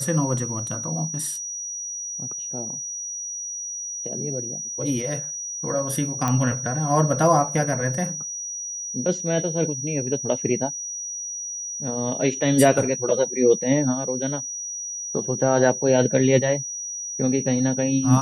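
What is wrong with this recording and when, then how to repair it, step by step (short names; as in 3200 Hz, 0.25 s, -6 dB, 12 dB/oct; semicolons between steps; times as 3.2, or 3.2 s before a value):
tone 5800 Hz -29 dBFS
6.28 pop -10 dBFS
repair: de-click; notch 5800 Hz, Q 30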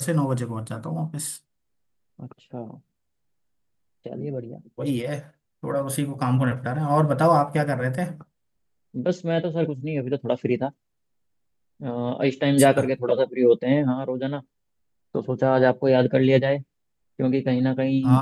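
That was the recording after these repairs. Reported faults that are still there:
none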